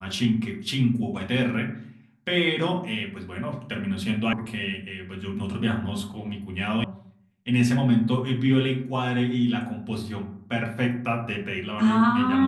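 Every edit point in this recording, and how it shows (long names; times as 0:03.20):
0:04.33: cut off before it has died away
0:06.84: cut off before it has died away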